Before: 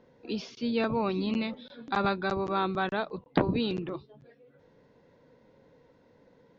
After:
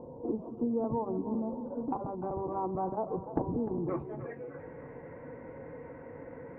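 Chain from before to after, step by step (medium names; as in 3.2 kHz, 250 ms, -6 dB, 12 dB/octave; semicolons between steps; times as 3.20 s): companding laws mixed up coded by mu; elliptic low-pass 980 Hz, stop band 50 dB, from 3.88 s 2.2 kHz; compression 6:1, threshold -36 dBFS, peak gain reduction 15.5 dB; comb of notches 200 Hz; two-band feedback delay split 380 Hz, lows 182 ms, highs 302 ms, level -12 dB; trim +8 dB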